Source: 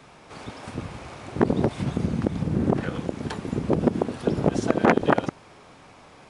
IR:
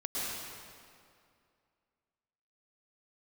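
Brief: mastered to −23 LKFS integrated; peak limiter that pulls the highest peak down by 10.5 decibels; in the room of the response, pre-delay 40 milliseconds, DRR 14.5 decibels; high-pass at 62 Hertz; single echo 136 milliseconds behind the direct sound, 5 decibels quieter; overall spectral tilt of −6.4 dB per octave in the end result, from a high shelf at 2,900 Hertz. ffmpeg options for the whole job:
-filter_complex "[0:a]highpass=62,highshelf=frequency=2900:gain=-4,alimiter=limit=-12.5dB:level=0:latency=1,aecho=1:1:136:0.562,asplit=2[link_01][link_02];[1:a]atrim=start_sample=2205,adelay=40[link_03];[link_02][link_03]afir=irnorm=-1:irlink=0,volume=-20dB[link_04];[link_01][link_04]amix=inputs=2:normalize=0,volume=4dB"

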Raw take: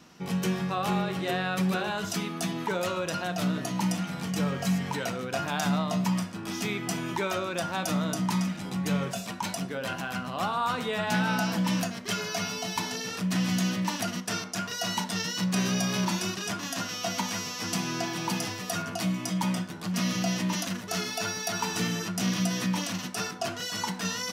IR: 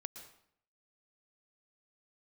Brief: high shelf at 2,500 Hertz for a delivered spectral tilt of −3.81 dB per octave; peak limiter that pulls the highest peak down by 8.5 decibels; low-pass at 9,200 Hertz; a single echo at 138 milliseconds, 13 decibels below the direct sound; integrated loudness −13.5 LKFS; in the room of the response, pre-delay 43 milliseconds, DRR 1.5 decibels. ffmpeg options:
-filter_complex "[0:a]lowpass=9200,highshelf=frequency=2500:gain=5.5,alimiter=limit=-20dB:level=0:latency=1,aecho=1:1:138:0.224,asplit=2[link_01][link_02];[1:a]atrim=start_sample=2205,adelay=43[link_03];[link_02][link_03]afir=irnorm=-1:irlink=0,volume=2dB[link_04];[link_01][link_04]amix=inputs=2:normalize=0,volume=13dB"

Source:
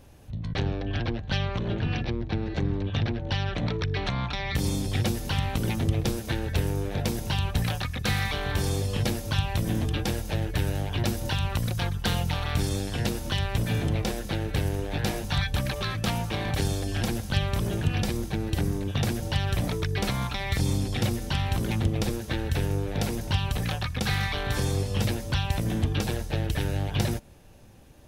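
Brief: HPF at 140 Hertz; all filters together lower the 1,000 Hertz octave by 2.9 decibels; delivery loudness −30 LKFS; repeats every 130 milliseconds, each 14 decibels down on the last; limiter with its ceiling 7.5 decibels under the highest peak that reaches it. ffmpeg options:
ffmpeg -i in.wav -af "highpass=140,equalizer=frequency=1000:width_type=o:gain=-4,alimiter=limit=-21.5dB:level=0:latency=1,aecho=1:1:130|260:0.2|0.0399,volume=2.5dB" out.wav

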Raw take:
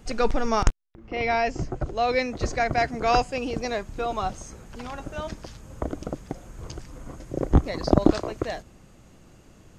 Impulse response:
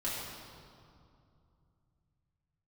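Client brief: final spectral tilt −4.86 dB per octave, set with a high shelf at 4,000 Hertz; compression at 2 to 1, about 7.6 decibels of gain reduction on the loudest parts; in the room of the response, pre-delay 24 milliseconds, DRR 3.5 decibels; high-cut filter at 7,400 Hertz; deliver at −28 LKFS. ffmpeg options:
-filter_complex "[0:a]lowpass=7400,highshelf=frequency=4000:gain=9,acompressor=threshold=-26dB:ratio=2,asplit=2[link_01][link_02];[1:a]atrim=start_sample=2205,adelay=24[link_03];[link_02][link_03]afir=irnorm=-1:irlink=0,volume=-8.5dB[link_04];[link_01][link_04]amix=inputs=2:normalize=0,volume=1.5dB"

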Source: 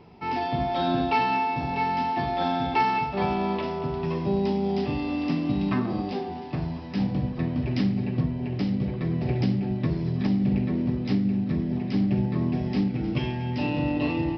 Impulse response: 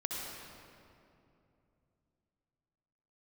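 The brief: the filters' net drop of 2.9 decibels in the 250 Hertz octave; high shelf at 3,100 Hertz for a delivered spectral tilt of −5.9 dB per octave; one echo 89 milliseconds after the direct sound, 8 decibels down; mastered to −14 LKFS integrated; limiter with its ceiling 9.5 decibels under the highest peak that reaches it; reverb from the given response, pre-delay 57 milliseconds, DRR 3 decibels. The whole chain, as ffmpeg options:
-filter_complex "[0:a]equalizer=frequency=250:width_type=o:gain=-4,highshelf=frequency=3100:gain=4.5,alimiter=limit=-22dB:level=0:latency=1,aecho=1:1:89:0.398,asplit=2[link_01][link_02];[1:a]atrim=start_sample=2205,adelay=57[link_03];[link_02][link_03]afir=irnorm=-1:irlink=0,volume=-6dB[link_04];[link_01][link_04]amix=inputs=2:normalize=0,volume=14.5dB"

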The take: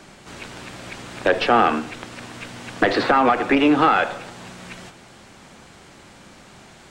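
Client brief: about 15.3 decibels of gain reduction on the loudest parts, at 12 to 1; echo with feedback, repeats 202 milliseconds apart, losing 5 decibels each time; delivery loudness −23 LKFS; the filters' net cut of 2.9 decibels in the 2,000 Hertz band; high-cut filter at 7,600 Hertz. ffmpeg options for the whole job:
ffmpeg -i in.wav -af "lowpass=7600,equalizer=frequency=2000:width_type=o:gain=-4,acompressor=threshold=-28dB:ratio=12,aecho=1:1:202|404|606|808|1010|1212|1414:0.562|0.315|0.176|0.0988|0.0553|0.031|0.0173,volume=10.5dB" out.wav

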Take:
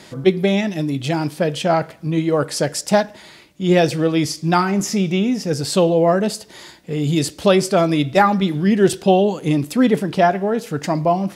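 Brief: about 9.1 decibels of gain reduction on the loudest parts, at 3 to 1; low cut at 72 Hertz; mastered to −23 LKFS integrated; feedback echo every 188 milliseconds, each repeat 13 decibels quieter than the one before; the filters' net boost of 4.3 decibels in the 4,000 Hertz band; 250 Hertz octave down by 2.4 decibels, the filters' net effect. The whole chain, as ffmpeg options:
ffmpeg -i in.wav -af "highpass=72,equalizer=frequency=250:width_type=o:gain=-3.5,equalizer=frequency=4000:width_type=o:gain=5.5,acompressor=threshold=-22dB:ratio=3,aecho=1:1:188|376|564:0.224|0.0493|0.0108,volume=1.5dB" out.wav

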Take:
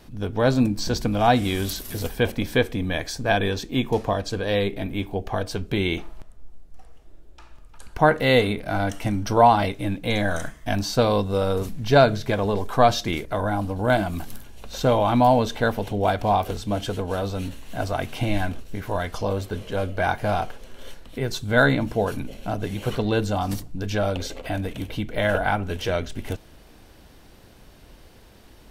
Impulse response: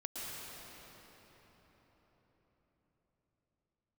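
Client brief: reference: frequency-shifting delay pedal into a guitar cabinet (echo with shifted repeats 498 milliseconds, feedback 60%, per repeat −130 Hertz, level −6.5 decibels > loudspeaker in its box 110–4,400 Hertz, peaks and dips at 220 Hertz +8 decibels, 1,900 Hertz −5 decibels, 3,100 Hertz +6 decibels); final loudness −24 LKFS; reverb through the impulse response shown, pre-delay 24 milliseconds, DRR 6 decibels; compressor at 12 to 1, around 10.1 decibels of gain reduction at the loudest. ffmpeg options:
-filter_complex "[0:a]acompressor=threshold=-20dB:ratio=12,asplit=2[link_01][link_02];[1:a]atrim=start_sample=2205,adelay=24[link_03];[link_02][link_03]afir=irnorm=-1:irlink=0,volume=-7.5dB[link_04];[link_01][link_04]amix=inputs=2:normalize=0,asplit=9[link_05][link_06][link_07][link_08][link_09][link_10][link_11][link_12][link_13];[link_06]adelay=498,afreqshift=-130,volume=-6.5dB[link_14];[link_07]adelay=996,afreqshift=-260,volume=-10.9dB[link_15];[link_08]adelay=1494,afreqshift=-390,volume=-15.4dB[link_16];[link_09]adelay=1992,afreqshift=-520,volume=-19.8dB[link_17];[link_10]adelay=2490,afreqshift=-650,volume=-24.2dB[link_18];[link_11]adelay=2988,afreqshift=-780,volume=-28.7dB[link_19];[link_12]adelay=3486,afreqshift=-910,volume=-33.1dB[link_20];[link_13]adelay=3984,afreqshift=-1040,volume=-37.6dB[link_21];[link_05][link_14][link_15][link_16][link_17][link_18][link_19][link_20][link_21]amix=inputs=9:normalize=0,highpass=110,equalizer=frequency=220:width_type=q:width=4:gain=8,equalizer=frequency=1900:width_type=q:width=4:gain=-5,equalizer=frequency=3100:width_type=q:width=4:gain=6,lowpass=frequency=4400:width=0.5412,lowpass=frequency=4400:width=1.3066,volume=0.5dB"

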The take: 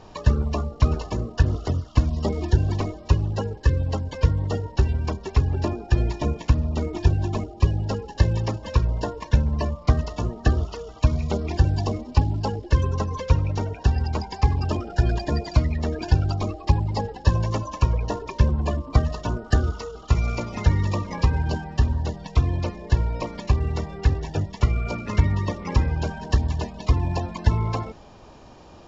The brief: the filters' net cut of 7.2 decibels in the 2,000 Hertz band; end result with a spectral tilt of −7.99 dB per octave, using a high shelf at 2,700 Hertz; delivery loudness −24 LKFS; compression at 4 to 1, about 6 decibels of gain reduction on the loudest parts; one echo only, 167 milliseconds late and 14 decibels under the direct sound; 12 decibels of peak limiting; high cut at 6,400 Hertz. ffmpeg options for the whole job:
ffmpeg -i in.wav -af "lowpass=6400,equalizer=frequency=2000:width_type=o:gain=-6.5,highshelf=frequency=2700:gain=-6.5,acompressor=threshold=-19dB:ratio=4,alimiter=limit=-21dB:level=0:latency=1,aecho=1:1:167:0.2,volume=7dB" out.wav

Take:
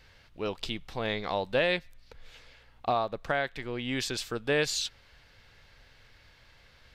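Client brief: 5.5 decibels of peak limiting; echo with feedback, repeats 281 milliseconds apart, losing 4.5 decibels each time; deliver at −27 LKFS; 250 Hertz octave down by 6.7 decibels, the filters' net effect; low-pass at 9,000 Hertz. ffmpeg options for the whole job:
ffmpeg -i in.wav -af "lowpass=9000,equalizer=frequency=250:width_type=o:gain=-9,alimiter=limit=-21dB:level=0:latency=1,aecho=1:1:281|562|843|1124|1405|1686|1967|2248|2529:0.596|0.357|0.214|0.129|0.0772|0.0463|0.0278|0.0167|0.01,volume=7dB" out.wav

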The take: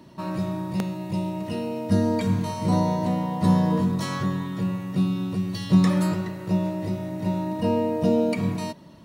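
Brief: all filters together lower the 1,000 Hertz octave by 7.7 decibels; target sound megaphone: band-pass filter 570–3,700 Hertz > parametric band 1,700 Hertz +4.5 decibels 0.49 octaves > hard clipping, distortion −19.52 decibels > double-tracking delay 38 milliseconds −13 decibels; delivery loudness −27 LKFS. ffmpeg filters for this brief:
ffmpeg -i in.wav -filter_complex "[0:a]highpass=570,lowpass=3700,equalizer=frequency=1000:width_type=o:gain=-8.5,equalizer=frequency=1700:width_type=o:width=0.49:gain=4.5,asoftclip=type=hard:threshold=-26.5dB,asplit=2[link_01][link_02];[link_02]adelay=38,volume=-13dB[link_03];[link_01][link_03]amix=inputs=2:normalize=0,volume=9.5dB" out.wav

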